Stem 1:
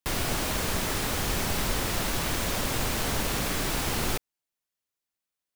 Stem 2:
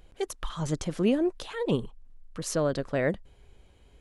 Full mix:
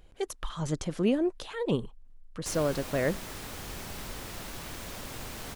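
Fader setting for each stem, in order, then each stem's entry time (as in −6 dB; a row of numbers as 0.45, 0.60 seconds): −12.0, −1.5 decibels; 2.40, 0.00 seconds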